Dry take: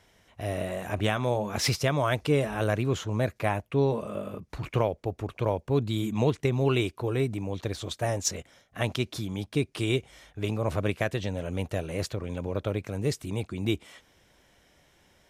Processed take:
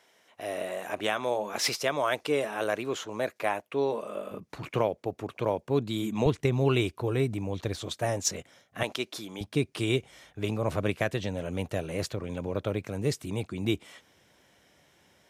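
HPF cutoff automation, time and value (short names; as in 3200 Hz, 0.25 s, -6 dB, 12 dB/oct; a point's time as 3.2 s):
350 Hz
from 4.31 s 160 Hz
from 6.26 s 47 Hz
from 7.76 s 110 Hz
from 8.83 s 340 Hz
from 9.41 s 97 Hz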